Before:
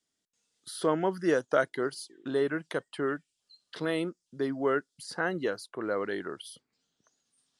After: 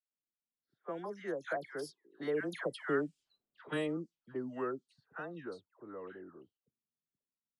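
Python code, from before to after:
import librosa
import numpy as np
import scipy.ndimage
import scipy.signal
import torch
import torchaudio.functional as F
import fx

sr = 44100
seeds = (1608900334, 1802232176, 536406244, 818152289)

y = fx.doppler_pass(x, sr, speed_mps=26, closest_m=14.0, pass_at_s=3.06)
y = fx.dispersion(y, sr, late='lows', ms=113.0, hz=1400.0)
y = fx.env_lowpass(y, sr, base_hz=320.0, full_db=-35.5)
y = F.gain(torch.from_numpy(y), -1.0).numpy()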